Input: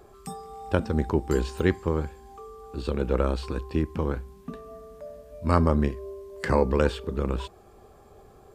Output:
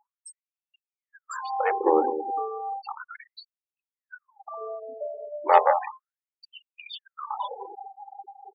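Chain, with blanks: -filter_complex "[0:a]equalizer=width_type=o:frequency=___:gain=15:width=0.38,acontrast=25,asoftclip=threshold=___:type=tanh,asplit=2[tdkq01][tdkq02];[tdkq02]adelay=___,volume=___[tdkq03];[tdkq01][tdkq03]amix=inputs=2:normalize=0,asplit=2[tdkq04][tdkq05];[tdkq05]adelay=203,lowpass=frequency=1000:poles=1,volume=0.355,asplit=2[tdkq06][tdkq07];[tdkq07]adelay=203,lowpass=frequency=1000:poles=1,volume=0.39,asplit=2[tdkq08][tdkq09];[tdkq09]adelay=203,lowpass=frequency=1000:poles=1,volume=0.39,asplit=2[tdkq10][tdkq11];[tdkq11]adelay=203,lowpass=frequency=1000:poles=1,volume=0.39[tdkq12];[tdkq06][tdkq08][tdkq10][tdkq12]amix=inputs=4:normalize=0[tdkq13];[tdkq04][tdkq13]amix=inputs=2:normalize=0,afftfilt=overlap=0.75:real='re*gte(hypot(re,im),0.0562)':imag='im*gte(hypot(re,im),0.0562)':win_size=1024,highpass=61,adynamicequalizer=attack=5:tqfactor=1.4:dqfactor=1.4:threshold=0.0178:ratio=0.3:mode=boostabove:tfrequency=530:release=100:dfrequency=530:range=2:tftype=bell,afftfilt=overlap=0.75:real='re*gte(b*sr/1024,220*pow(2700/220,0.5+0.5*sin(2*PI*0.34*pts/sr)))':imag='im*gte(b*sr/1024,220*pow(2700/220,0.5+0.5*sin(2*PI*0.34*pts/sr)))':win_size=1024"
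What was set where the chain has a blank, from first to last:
820, 0.316, 23, 0.299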